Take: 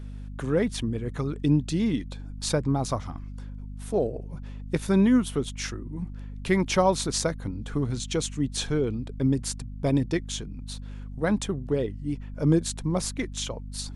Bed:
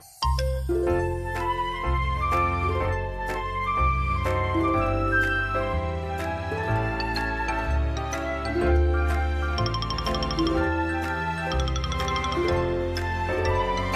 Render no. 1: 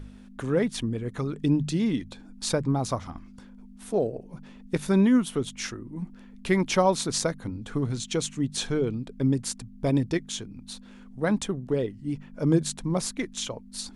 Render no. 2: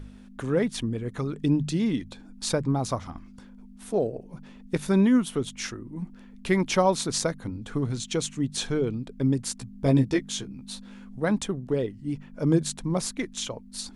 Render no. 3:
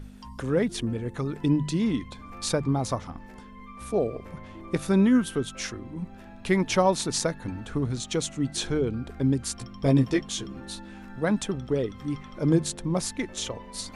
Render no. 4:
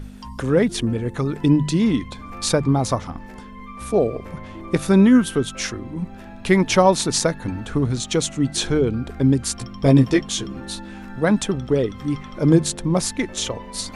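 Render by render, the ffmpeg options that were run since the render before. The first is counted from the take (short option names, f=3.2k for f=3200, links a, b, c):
-af "bandreject=f=50:t=h:w=4,bandreject=f=100:t=h:w=4,bandreject=f=150:t=h:w=4"
-filter_complex "[0:a]asettb=1/sr,asplit=3[a][b][c];[a]atrim=end=9.594[d];[b]atrim=start=9.59:end=11.19,asetpts=PTS-STARTPTS,afade=t=in:d=0.004:c=qsin,afade=t=out:st=1.596:d=0.004:c=qsin,asplit=2[e][f];[f]adelay=15,volume=-3dB[g];[e][g]amix=inputs=2:normalize=0,atrim=end_sample=70560[h];[c]atrim=start=11.186[i];[d][h]acrossfade=d=0.004:c1=hsin:c2=qsin[j];[j][i]acrossfade=d=0.004:c1=qsin:c2=hsin"
-filter_complex "[1:a]volume=-21dB[a];[0:a][a]amix=inputs=2:normalize=0"
-af "volume=7dB,alimiter=limit=-3dB:level=0:latency=1"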